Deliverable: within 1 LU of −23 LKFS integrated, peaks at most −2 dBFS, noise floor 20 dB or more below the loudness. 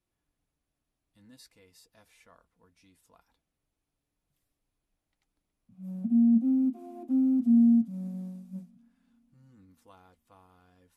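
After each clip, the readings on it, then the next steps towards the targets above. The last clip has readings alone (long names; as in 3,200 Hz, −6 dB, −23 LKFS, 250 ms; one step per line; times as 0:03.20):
integrated loudness −25.0 LKFS; sample peak −15.5 dBFS; target loudness −23.0 LKFS
→ level +2 dB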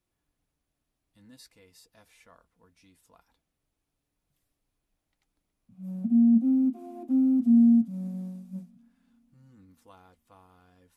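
integrated loudness −23.5 LKFS; sample peak −13.5 dBFS; background noise floor −83 dBFS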